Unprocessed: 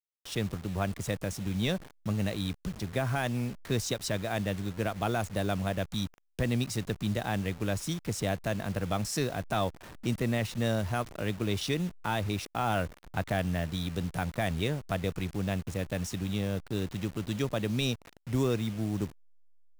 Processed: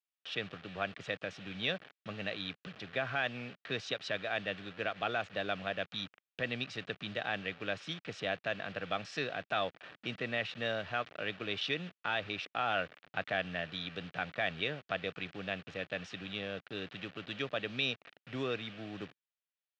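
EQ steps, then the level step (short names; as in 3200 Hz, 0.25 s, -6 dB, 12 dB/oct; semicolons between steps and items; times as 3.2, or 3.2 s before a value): speaker cabinet 140–3100 Hz, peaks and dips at 220 Hz -6 dB, 350 Hz -5 dB, 950 Hz -10 dB; tilt +3.5 dB/oct; notch 2100 Hz, Q 12; 0.0 dB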